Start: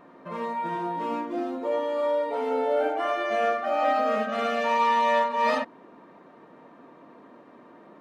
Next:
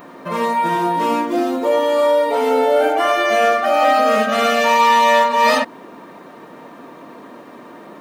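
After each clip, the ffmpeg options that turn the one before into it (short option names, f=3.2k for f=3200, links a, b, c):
-filter_complex "[0:a]aemphasis=mode=production:type=75kf,asplit=2[a][b];[b]alimiter=limit=-21dB:level=0:latency=1:release=131,volume=0dB[c];[a][c]amix=inputs=2:normalize=0,volume=5.5dB"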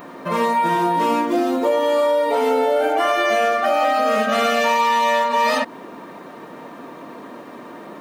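-af "acompressor=threshold=-16dB:ratio=6,volume=1.5dB"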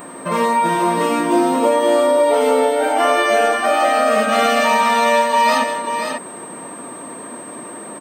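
-filter_complex "[0:a]aeval=exprs='val(0)+0.00891*sin(2*PI*8300*n/s)':c=same,asplit=2[a][b];[b]aecho=0:1:160|537:0.188|0.473[c];[a][c]amix=inputs=2:normalize=0,volume=2dB"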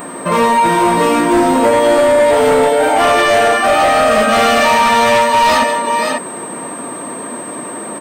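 -filter_complex "[0:a]flanger=delay=4.2:depth=5:regen=-82:speed=0.69:shape=triangular,asplit=2[a][b];[b]aeval=exprs='0.398*sin(PI/2*2.51*val(0)/0.398)':c=same,volume=-3dB[c];[a][c]amix=inputs=2:normalize=0"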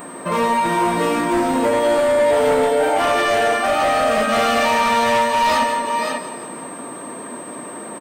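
-af "aecho=1:1:172|344|516|688|860:0.251|0.116|0.0532|0.0244|0.0112,volume=-6.5dB"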